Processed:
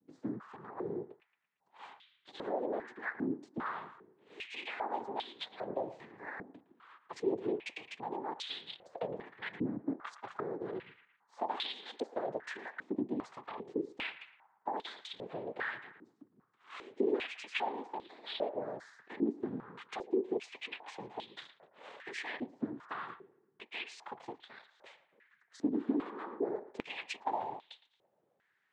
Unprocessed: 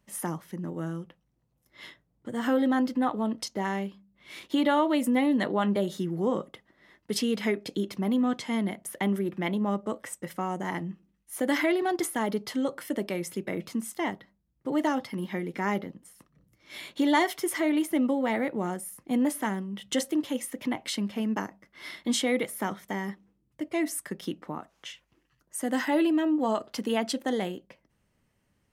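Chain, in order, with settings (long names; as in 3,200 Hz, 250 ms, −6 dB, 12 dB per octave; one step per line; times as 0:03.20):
downward compressor 6 to 1, threshold −34 dBFS, peak gain reduction 15 dB
cochlear-implant simulation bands 6
feedback echo with a band-pass in the loop 113 ms, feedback 53%, band-pass 1,400 Hz, level −13 dB
band-pass on a step sequencer 2.5 Hz 280–3,600 Hz
level +10 dB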